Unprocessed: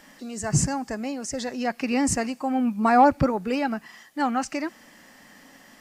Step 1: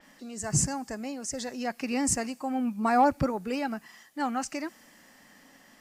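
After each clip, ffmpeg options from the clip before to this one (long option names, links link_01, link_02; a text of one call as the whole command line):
ffmpeg -i in.wav -af "adynamicequalizer=threshold=0.00708:dfrequency=5400:dqfactor=0.7:tfrequency=5400:tqfactor=0.7:attack=5:release=100:ratio=0.375:range=3.5:mode=boostabove:tftype=highshelf,volume=-5.5dB" out.wav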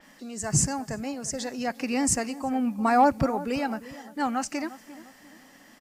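ffmpeg -i in.wav -filter_complex "[0:a]asplit=2[link_01][link_02];[link_02]adelay=349,lowpass=frequency=1300:poles=1,volume=-15dB,asplit=2[link_03][link_04];[link_04]adelay=349,lowpass=frequency=1300:poles=1,volume=0.41,asplit=2[link_05][link_06];[link_06]adelay=349,lowpass=frequency=1300:poles=1,volume=0.41,asplit=2[link_07][link_08];[link_08]adelay=349,lowpass=frequency=1300:poles=1,volume=0.41[link_09];[link_01][link_03][link_05][link_07][link_09]amix=inputs=5:normalize=0,volume=2.5dB" out.wav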